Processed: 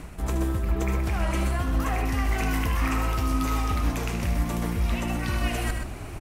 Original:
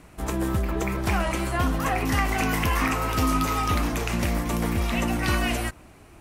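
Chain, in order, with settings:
low-shelf EQ 95 Hz +9.5 dB
reversed playback
downward compressor 10 to 1, threshold −33 dBFS, peak gain reduction 18 dB
reversed playback
loudspeakers that aren't time-aligned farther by 26 metres −8 dB, 43 metres −8 dB
level +9 dB

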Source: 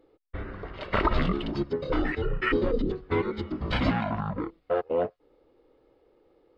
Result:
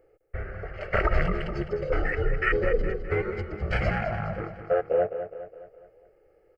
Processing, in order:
phaser with its sweep stopped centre 1,000 Hz, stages 6
repeating echo 207 ms, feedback 49%, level −10 dB
level +3.5 dB

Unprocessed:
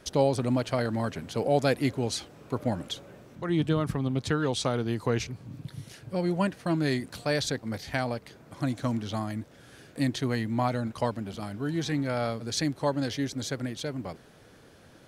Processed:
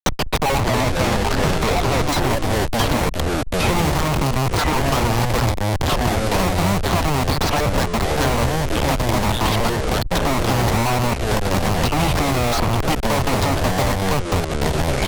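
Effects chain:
time-frequency cells dropped at random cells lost 28%
multiband delay without the direct sound highs, lows 270 ms, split 3,000 Hz
comparator with hysteresis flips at −35.5 dBFS
octave-band graphic EQ 250/1,000/2,000/4,000 Hz −7/+9/−11/+8 dB
fuzz pedal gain 58 dB, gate −49 dBFS
delay with pitch and tempo change per echo 114 ms, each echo −4 semitones, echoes 3
0:00.60–0:02.09: high-shelf EQ 9,800 Hz −8 dB
multiband upward and downward compressor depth 100%
level −6 dB

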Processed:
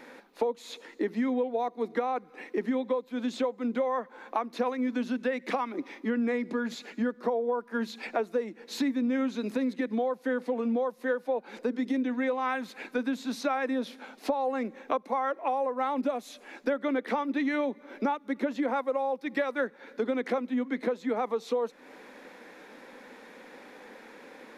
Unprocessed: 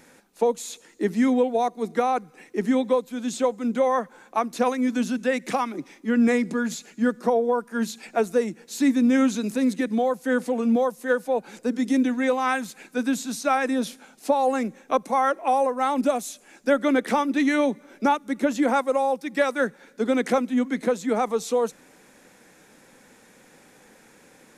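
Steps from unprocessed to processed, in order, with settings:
octave-band graphic EQ 125/250/500/1,000/2,000/4,000/8,000 Hz −11/+10/+9/+9/+8/+8/−8 dB
downward compressor 4 to 1, threshold −23 dBFS, peak gain reduction 16 dB
level −5.5 dB

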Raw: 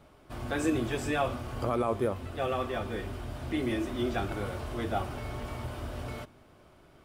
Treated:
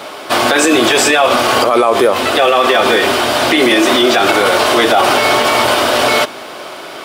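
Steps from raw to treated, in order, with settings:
high-pass filter 460 Hz 12 dB per octave
parametric band 4,100 Hz +5.5 dB 1.3 octaves
boost into a limiter +33.5 dB
level −1 dB

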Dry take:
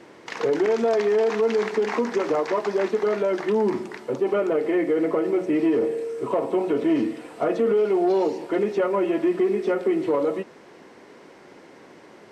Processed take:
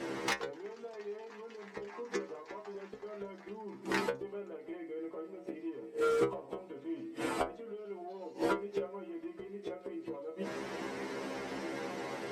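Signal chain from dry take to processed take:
gate with flip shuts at −18 dBFS, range −29 dB
hard clipping −31 dBFS, distortion −9 dB
stiff-string resonator 65 Hz, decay 0.31 s, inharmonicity 0.002
level +15 dB

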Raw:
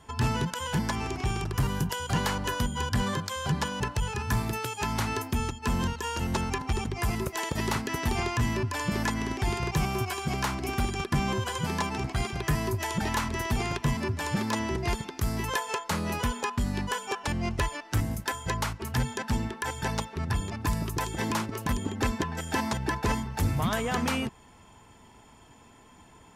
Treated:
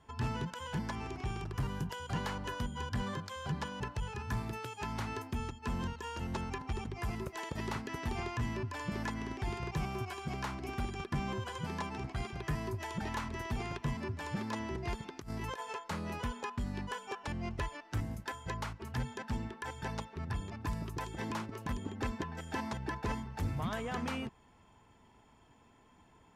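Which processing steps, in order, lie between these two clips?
0:15.02–0:15.75: compressor whose output falls as the input rises −31 dBFS, ratio −0.5
low-pass filter 3,700 Hz 6 dB per octave
level −8.5 dB

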